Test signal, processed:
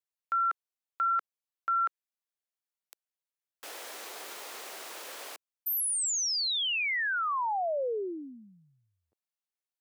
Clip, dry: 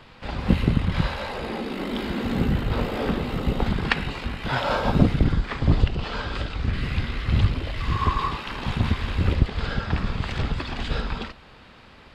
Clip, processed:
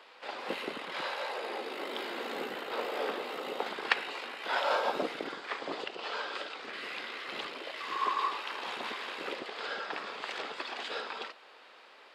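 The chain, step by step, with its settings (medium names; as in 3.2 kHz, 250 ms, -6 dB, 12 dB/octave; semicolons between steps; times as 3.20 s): high-pass 400 Hz 24 dB/octave; trim -4.5 dB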